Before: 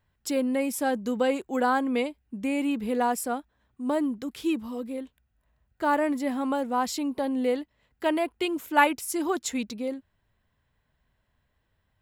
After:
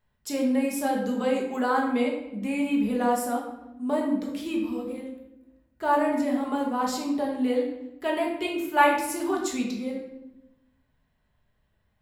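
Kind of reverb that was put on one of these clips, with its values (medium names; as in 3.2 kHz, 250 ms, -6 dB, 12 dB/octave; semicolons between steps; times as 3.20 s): simulated room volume 320 m³, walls mixed, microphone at 1.4 m; trim -4 dB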